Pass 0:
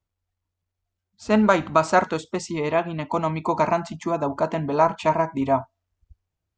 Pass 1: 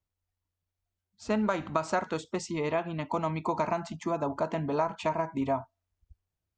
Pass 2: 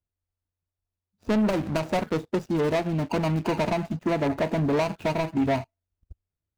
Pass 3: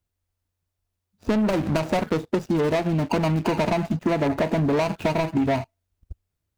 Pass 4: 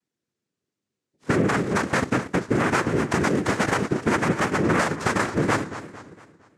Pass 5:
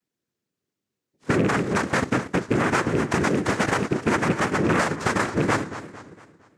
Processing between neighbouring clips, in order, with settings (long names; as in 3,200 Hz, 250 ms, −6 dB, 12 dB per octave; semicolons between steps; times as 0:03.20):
downward compressor, threshold −19 dBFS, peak gain reduction 7.5 dB; level −5 dB
running median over 41 samples; leveller curve on the samples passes 2; level +3 dB
downward compressor, threshold −27 dBFS, peak gain reduction 7 dB; level +7.5 dB
cochlear-implant simulation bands 3; feedback echo with a swinging delay time 228 ms, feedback 44%, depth 181 cents, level −13 dB
loose part that buzzes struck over −20 dBFS, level −21 dBFS; Nellymoser 88 kbit/s 44,100 Hz